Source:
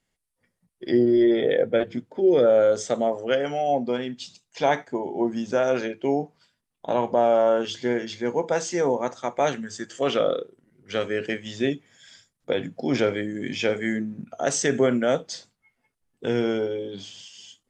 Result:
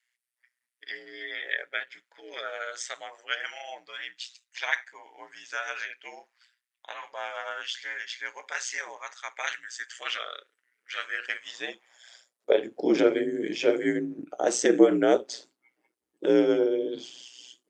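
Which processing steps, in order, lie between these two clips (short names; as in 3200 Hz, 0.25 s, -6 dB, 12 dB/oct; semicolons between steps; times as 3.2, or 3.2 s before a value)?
ring modulator 61 Hz; high-pass sweep 1800 Hz -> 330 Hz, 10.9–12.95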